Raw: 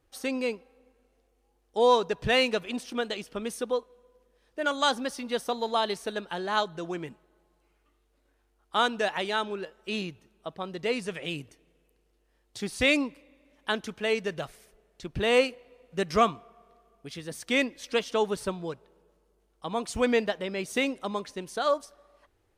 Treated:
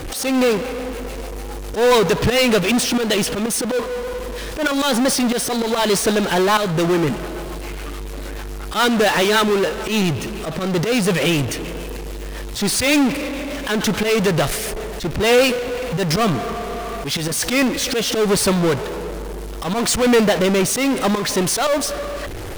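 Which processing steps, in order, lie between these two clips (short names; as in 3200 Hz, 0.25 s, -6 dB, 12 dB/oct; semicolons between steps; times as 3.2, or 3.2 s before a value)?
auto swell 0.19 s; rotary speaker horn 7 Hz, later 0.7 Hz, at 15.01; power-law curve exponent 0.35; gain +4.5 dB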